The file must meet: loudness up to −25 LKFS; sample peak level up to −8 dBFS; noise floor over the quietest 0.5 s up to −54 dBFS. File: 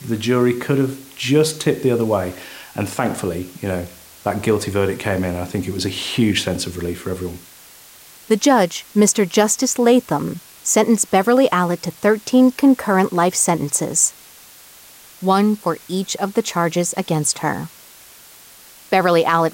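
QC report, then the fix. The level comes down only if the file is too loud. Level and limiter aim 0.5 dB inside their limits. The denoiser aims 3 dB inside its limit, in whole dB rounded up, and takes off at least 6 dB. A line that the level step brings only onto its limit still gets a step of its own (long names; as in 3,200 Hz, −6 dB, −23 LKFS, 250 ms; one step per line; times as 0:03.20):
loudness −18.0 LKFS: out of spec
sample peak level −3.5 dBFS: out of spec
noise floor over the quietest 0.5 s −44 dBFS: out of spec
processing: broadband denoise 6 dB, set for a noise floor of −44 dBFS
level −7.5 dB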